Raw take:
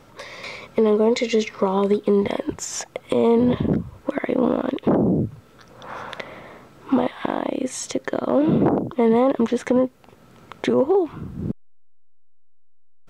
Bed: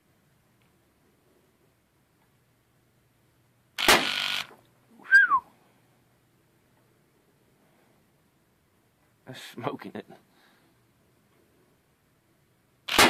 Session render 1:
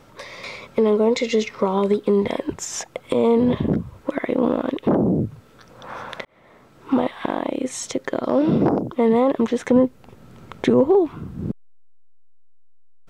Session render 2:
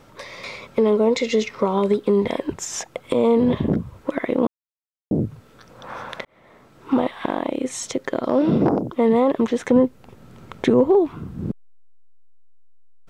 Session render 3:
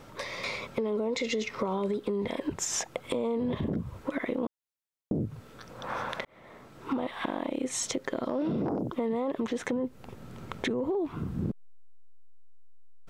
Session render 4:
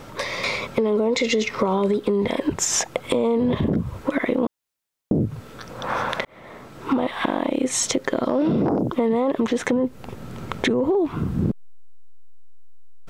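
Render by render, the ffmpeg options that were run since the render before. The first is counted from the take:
-filter_complex "[0:a]asettb=1/sr,asplit=3[s0][s1][s2];[s0]atrim=end=8.234[s3];[s1]atrim=start=8.23:end=8.81,asetpts=PTS-STARTPTS,afade=t=in:d=0.004:c=qsin,afade=t=out:st=0.576:d=0.004:c=qsin,equalizer=f=5200:w=3.7:g=13.5[s4];[s2]atrim=start=8.806[s5];[s3][s4]acrossfade=d=0.004:c1=hsin:c2=qsin[s6];[s6][s5]acrossfade=d=0.004:c1=qsin:c2=hsin,asettb=1/sr,asplit=3[s7][s8][s9];[s7]atrim=end=9.714[s10];[s8]atrim=start=9.71:end=11.08,asetpts=PTS-STARTPTS,afade=t=in:d=0.004:c=qsin,afade=t=out:st=1.366:d=0.004:c=qsin,lowshelf=f=250:g=8.5[s11];[s9]atrim=start=11.076[s12];[s10][s11]acrossfade=d=0.004:c1=hsin:c2=qsin[s13];[s13][s12]acrossfade=d=0.004:c1=qsin:c2=hsin,asplit=2[s14][s15];[s14]atrim=end=6.25,asetpts=PTS-STARTPTS,afade=t=out:st=6.246:d=0.004:c=hsin[s16];[s15]atrim=start=6.25,asetpts=PTS-STARTPTS,afade=t=in:d=0.7[s17];[s16][s17]concat=n=2:v=0:a=1"
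-filter_complex "[0:a]asplit=3[s0][s1][s2];[s0]atrim=end=4.47,asetpts=PTS-STARTPTS,afade=t=out:st=4.466:d=0.004:c=hsin[s3];[s1]atrim=start=4.47:end=5.11,asetpts=PTS-STARTPTS,volume=0[s4];[s2]atrim=start=5.11,asetpts=PTS-STARTPTS,afade=t=in:d=0.004:c=hsin[s5];[s3][s4][s5]concat=n=3:v=0:a=1"
-af "alimiter=limit=0.158:level=0:latency=1:release=18,acompressor=threshold=0.0447:ratio=6"
-af "volume=2.99"

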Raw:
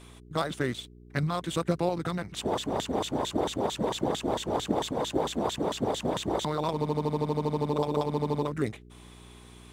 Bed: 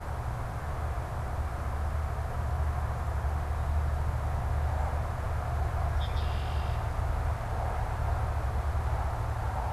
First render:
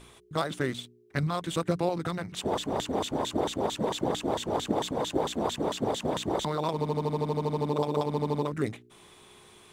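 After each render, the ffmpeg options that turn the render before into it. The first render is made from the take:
-af "bandreject=f=60:t=h:w=4,bandreject=f=120:t=h:w=4,bandreject=f=180:t=h:w=4,bandreject=f=240:t=h:w=4,bandreject=f=300:t=h:w=4"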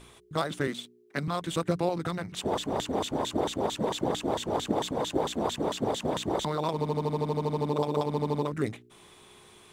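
-filter_complex "[0:a]asettb=1/sr,asplit=3[s0][s1][s2];[s0]atrim=end=0.674[s3];[s1]atrim=start=0.67:end=1.28,asetpts=PTS-STARTPTS,afade=t=in:d=0.004:c=qsin,afade=t=out:st=0.606:d=0.004:c=qsin,highpass=f=170:w=0.5412,highpass=f=170:w=1.3066[s4];[s2]atrim=start=1.276[s5];[s3][s4]acrossfade=d=0.004:c1=hsin:c2=qsin[s6];[s6][s5]acrossfade=d=0.004:c1=qsin:c2=hsin"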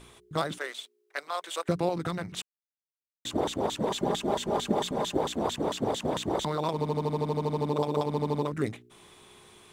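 -filter_complex "[0:a]asettb=1/sr,asplit=3[s0][s1][s2];[s0]atrim=end=0.584[s3];[s1]atrim=start=0.58:end=1.69,asetpts=PTS-STARTPTS,afade=t=in:d=0.004:c=qsin,afade=t=out:st=1.106:d=0.004:c=qsin,highpass=f=520:w=0.5412,highpass=f=520:w=1.3066[s4];[s2]atrim=start=1.686[s5];[s3][s4]acrossfade=d=0.004:c1=hsin:c2=qsin[s6];[s6][s5]acrossfade=d=0.004:c1=qsin:c2=hsin,asettb=1/sr,asplit=3[s7][s8][s9];[s7]atrim=end=3.894[s10];[s8]atrim=start=3.89:end=5.16,asetpts=PTS-STARTPTS,afade=t=in:d=0.004:c=qsin,afade=t=out:st=1.266:d=0.004:c=qsin,aecho=1:1:5:0.5,atrim=end_sample=56007[s11];[s9]atrim=start=5.156[s12];[s10][s11]acrossfade=d=0.004:c1=hsin:c2=qsin[s13];[s13][s12]acrossfade=d=0.004:c1=qsin:c2=hsin,asplit=3[s14][s15][s16];[s14]atrim=end=2.42,asetpts=PTS-STARTPTS,afade=t=out:st=2.416:d=0.004:c=hsin[s17];[s15]atrim=start=2.42:end=3.25,asetpts=PTS-STARTPTS,volume=0[s18];[s16]atrim=start=3.25,asetpts=PTS-STARTPTS,afade=t=in:d=0.004:c=hsin[s19];[s17][s18][s19]concat=n=3:v=0:a=1"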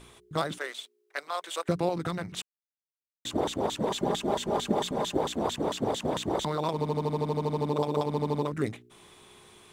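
-af anull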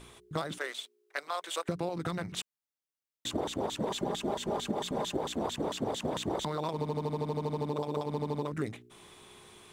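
-af "acompressor=threshold=0.0355:ratio=6"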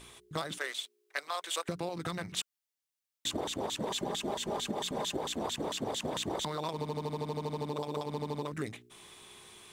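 -af "tiltshelf=f=1400:g=-3.5,bandreject=f=1400:w=27"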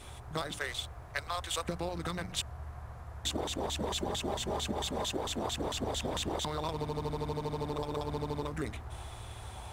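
-filter_complex "[1:a]volume=0.211[s0];[0:a][s0]amix=inputs=2:normalize=0"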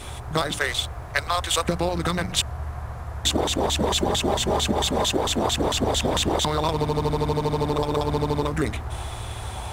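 -af "volume=3.98"

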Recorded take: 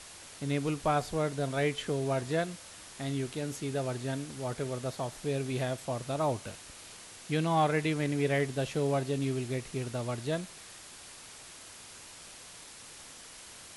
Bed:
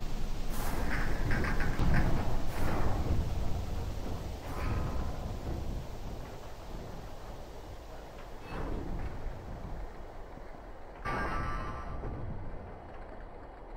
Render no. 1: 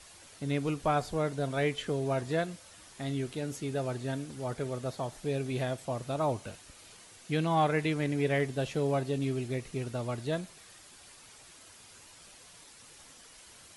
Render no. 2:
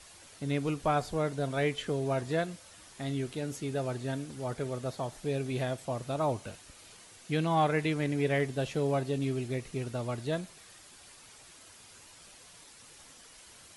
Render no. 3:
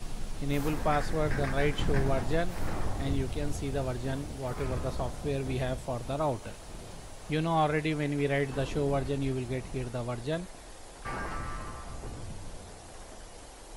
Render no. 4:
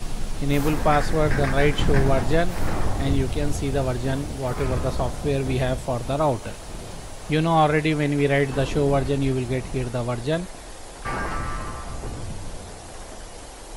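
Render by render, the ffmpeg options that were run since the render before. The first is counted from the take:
-af "afftdn=nr=7:nf=-50"
-af anull
-filter_complex "[1:a]volume=0.794[s0];[0:a][s0]amix=inputs=2:normalize=0"
-af "volume=2.66"

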